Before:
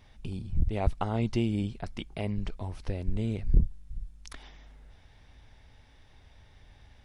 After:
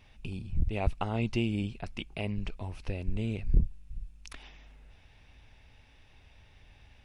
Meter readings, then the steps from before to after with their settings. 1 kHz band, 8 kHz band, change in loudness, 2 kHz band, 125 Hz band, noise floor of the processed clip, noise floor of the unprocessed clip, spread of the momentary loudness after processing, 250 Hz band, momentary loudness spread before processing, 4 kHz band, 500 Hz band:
-2.0 dB, n/a, -2.0 dB, +3.5 dB, -2.0 dB, -59 dBFS, -58 dBFS, 17 LU, -2.0 dB, 17 LU, +1.5 dB, -2.0 dB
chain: bell 2600 Hz +10.5 dB 0.3 oct; gain -2 dB

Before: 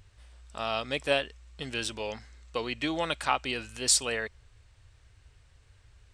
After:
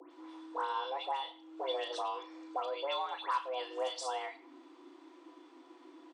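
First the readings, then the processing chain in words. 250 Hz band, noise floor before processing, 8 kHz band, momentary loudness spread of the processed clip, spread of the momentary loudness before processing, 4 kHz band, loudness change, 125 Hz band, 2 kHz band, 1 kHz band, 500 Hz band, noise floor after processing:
-11.5 dB, -60 dBFS, -22.0 dB, 20 LU, 15 LU, -9.0 dB, -7.5 dB, under -40 dB, -12.5 dB, -0.5 dB, -5.0 dB, -59 dBFS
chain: band shelf 660 Hz +8.5 dB; compressor 6:1, threshold -37 dBFS, peak gain reduction 21 dB; air absorption 92 m; doubler 35 ms -10.5 dB; small resonant body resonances 240/730/3200 Hz, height 16 dB, ringing for 85 ms; dispersion highs, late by 0.113 s, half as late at 1800 Hz; speakerphone echo 0.11 s, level -20 dB; frequency shift +260 Hz; warbling echo 93 ms, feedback 32%, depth 62 cents, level -19 dB

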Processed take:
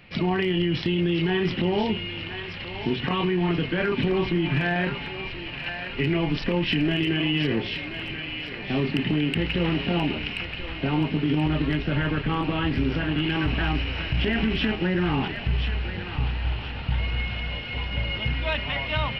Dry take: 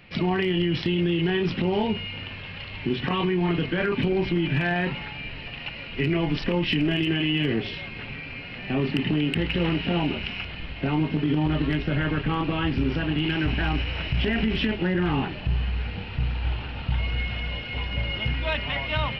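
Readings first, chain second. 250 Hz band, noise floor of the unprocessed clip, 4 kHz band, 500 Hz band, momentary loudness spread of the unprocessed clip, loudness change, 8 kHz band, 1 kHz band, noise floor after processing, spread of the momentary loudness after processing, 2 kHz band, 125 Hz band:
0.0 dB, -37 dBFS, +1.0 dB, 0.0 dB, 10 LU, +0.5 dB, n/a, +0.5 dB, -35 dBFS, 8 LU, +1.0 dB, 0.0 dB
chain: thinning echo 1.03 s, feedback 42%, high-pass 820 Hz, level -6.5 dB

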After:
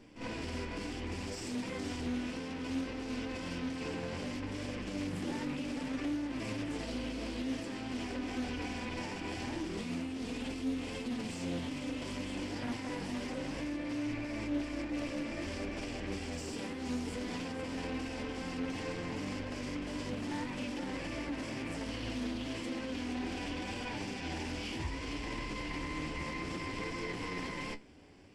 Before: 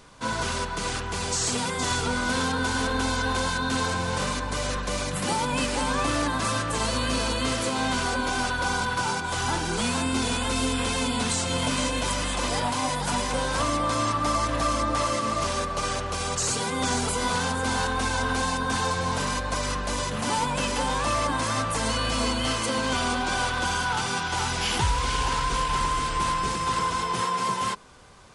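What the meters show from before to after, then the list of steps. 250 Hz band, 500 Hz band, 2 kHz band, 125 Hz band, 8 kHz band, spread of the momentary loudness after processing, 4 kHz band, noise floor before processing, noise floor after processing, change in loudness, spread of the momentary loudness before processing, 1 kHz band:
-5.5 dB, -11.5 dB, -14.5 dB, -12.5 dB, -21.0 dB, 3 LU, -16.0 dB, -30 dBFS, -41 dBFS, -12.5 dB, 3 LU, -20.0 dB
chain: minimum comb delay 0.38 ms; bell 290 Hz +14 dB 0.54 oct; limiter -22 dBFS, peak gain reduction 12.5 dB; flange 0.63 Hz, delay 8.4 ms, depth 5.7 ms, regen +50%; air absorption 71 m; on a send: reverse echo 52 ms -8 dB; on the sum: Doppler distortion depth 0.22 ms; gain -4 dB

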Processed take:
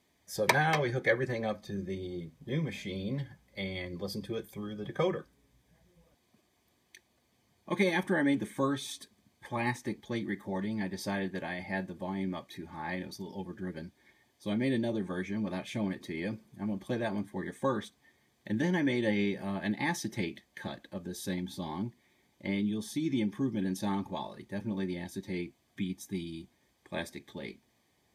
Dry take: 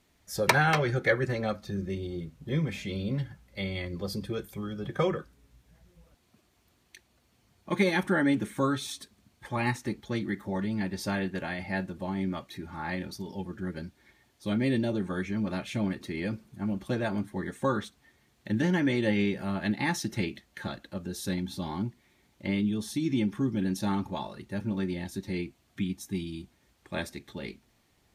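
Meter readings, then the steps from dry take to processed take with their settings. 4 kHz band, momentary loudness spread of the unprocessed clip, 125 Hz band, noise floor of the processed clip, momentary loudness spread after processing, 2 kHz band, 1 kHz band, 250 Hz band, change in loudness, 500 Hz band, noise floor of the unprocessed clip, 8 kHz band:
-3.0 dB, 13 LU, -5.0 dB, -72 dBFS, 13 LU, -3.0 dB, -3.0 dB, -3.5 dB, -3.0 dB, -2.0 dB, -68 dBFS, -3.0 dB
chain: notch comb 1400 Hz; gain -2 dB

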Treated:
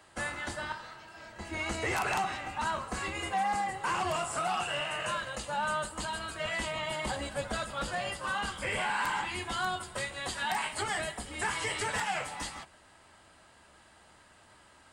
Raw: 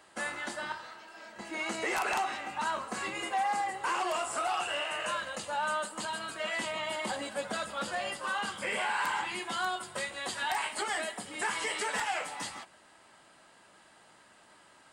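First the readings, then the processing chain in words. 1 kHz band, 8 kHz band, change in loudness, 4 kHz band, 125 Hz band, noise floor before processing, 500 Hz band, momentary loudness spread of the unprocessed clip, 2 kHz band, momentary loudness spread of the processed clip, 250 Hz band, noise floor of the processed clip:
0.0 dB, 0.0 dB, 0.0 dB, 0.0 dB, +11.0 dB, -60 dBFS, 0.0 dB, 7 LU, 0.0 dB, 7 LU, +1.5 dB, -59 dBFS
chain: octaver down 2 oct, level +2 dB

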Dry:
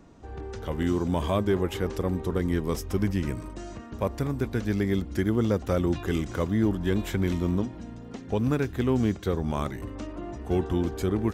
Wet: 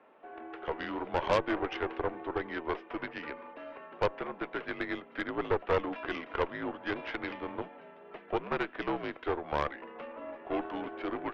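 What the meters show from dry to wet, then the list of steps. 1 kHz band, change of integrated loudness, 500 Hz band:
+1.5 dB, -7.5 dB, -5.0 dB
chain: mistuned SSB -62 Hz 490–2900 Hz; added harmonics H 6 -12 dB, 8 -21 dB, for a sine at -17 dBFS; gain +1 dB

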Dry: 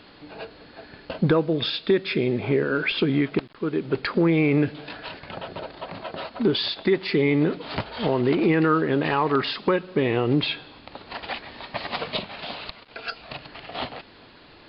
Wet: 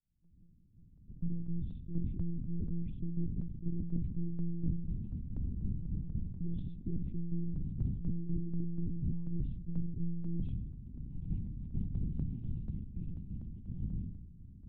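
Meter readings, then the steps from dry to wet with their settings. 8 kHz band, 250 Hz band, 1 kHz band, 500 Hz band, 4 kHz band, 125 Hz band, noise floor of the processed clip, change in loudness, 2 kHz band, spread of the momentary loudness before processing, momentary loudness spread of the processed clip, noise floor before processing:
n/a, -14.5 dB, under -40 dB, -32.0 dB, under -40 dB, -6.5 dB, -60 dBFS, -15.5 dB, under -40 dB, 17 LU, 6 LU, -49 dBFS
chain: opening faded in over 3.68 s; in parallel at -10 dB: bit-crush 6-bit; on the sum: monotone LPC vocoder at 8 kHz 170 Hz; inverse Chebyshev low-pass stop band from 560 Hz, stop band 50 dB; reverse; compressor 12:1, threshold -33 dBFS, peak gain reduction 16.5 dB; reverse; tremolo saw down 4.1 Hz, depth 60%; sustainer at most 54 dB/s; gain +5 dB

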